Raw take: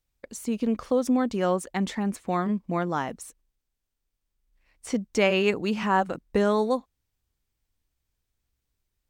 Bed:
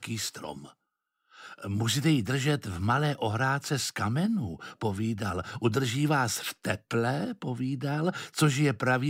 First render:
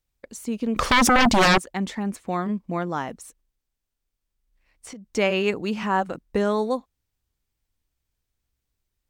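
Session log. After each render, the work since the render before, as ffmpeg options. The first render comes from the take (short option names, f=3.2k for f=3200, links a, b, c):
-filter_complex "[0:a]asettb=1/sr,asplit=3[a][b][c];[a]atrim=end=0.764[d];[b]atrim=start=0.76:end=1.58,asetpts=PTS-STARTPTS,afade=t=in:d=0.004:c=qsin,afade=t=out:st=0.816:d=0.004:c=qsin,aeval=exprs='0.224*sin(PI/2*5.62*val(0)/0.224)':c=same[e];[c]atrim=start=1.576[f];[d][e]acrossfade=d=0.004:c1=hsin:c2=qsin[g];[g][f]acrossfade=d=0.004:c1=qsin:c2=hsin,asettb=1/sr,asplit=3[h][i][j];[h]atrim=end=3.194[k];[i]atrim=start=3.19:end=5.07,asetpts=PTS-STARTPTS,afade=t=in:d=0.004:c=qsin,afade=t=out:st=1.876:d=0.004:c=qsin,acompressor=threshold=-37dB:ratio=6:attack=3.2:release=140:knee=1:detection=peak[l];[j]atrim=start=5.066[m];[k][l]acrossfade=d=0.004:c1=hsin:c2=qsin[n];[n][m]acrossfade=d=0.004:c1=qsin:c2=hsin"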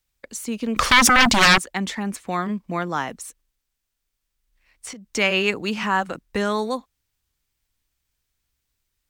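-filter_complex "[0:a]acrossover=split=270|1100[a][b][c];[b]alimiter=limit=-21dB:level=0:latency=1[d];[c]acontrast=73[e];[a][d][e]amix=inputs=3:normalize=0"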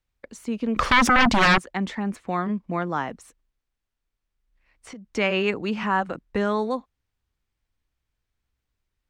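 -af "lowpass=f=1.6k:p=1"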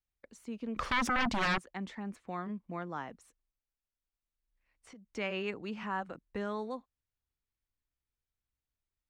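-af "volume=-13dB"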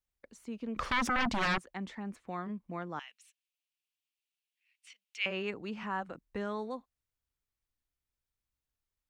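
-filter_complex "[0:a]asettb=1/sr,asplit=3[a][b][c];[a]atrim=end=2.994[d];[b]atrim=start=2.99:end=5.26,asetpts=PTS-STARTPTS,afade=t=in:d=0.004:c=qsin,afade=t=out:st=2.266:d=0.004:c=qsin,highpass=f=2.7k:t=q:w=3.4[e];[c]atrim=start=5.256[f];[d][e]acrossfade=d=0.004:c1=hsin:c2=qsin[g];[g][f]acrossfade=d=0.004:c1=qsin:c2=hsin"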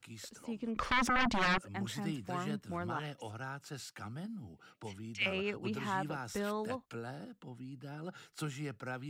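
-filter_complex "[1:a]volume=-16dB[a];[0:a][a]amix=inputs=2:normalize=0"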